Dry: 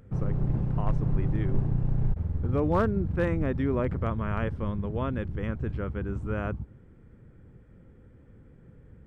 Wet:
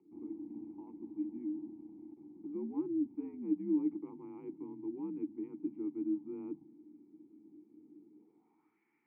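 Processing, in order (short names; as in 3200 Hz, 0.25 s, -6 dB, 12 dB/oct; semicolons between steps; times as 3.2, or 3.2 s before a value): high shelf 2400 Hz +8.5 dB; reverse; compressor 5:1, threshold -33 dBFS, peak gain reduction 13 dB; reverse; mistuned SSB -76 Hz 170–3100 Hz; band-pass sweep 310 Hz -> 1800 Hz, 8.09–8.8; vowel filter u; on a send: reverb RT60 0.15 s, pre-delay 3 ms, DRR 19.5 dB; on the sum: gain +12.5 dB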